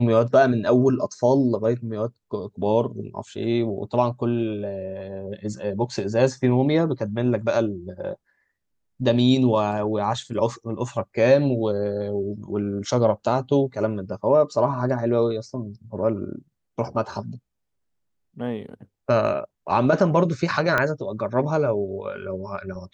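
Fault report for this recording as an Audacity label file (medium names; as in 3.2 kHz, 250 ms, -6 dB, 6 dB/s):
20.780000	20.780000	pop -8 dBFS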